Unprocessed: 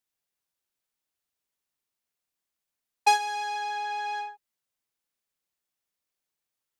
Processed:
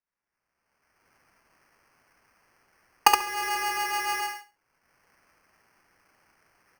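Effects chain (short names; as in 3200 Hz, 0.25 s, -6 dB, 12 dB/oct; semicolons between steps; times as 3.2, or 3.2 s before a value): recorder AGC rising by 28 dB/s; HPF 1400 Hz 12 dB/oct; air absorption 470 m; feedback echo 69 ms, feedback 18%, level -4 dB; sample-rate reducer 3700 Hz, jitter 0%; gain +4.5 dB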